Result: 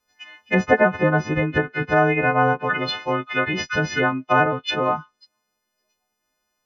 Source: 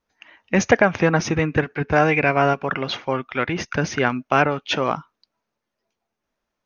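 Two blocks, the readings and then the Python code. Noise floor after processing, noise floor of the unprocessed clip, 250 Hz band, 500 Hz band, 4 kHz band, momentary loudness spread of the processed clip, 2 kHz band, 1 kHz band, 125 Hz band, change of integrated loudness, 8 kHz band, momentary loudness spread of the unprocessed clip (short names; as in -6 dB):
-77 dBFS, -81 dBFS, -1.0 dB, -0.5 dB, +0.5 dB, 6 LU, +1.5 dB, +1.0 dB, -0.5 dB, 0.0 dB, n/a, 8 LU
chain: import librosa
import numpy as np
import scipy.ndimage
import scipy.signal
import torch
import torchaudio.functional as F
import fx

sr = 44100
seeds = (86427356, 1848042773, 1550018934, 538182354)

y = fx.freq_snap(x, sr, grid_st=3)
y = fx.env_lowpass_down(y, sr, base_hz=1400.0, full_db=-15.0)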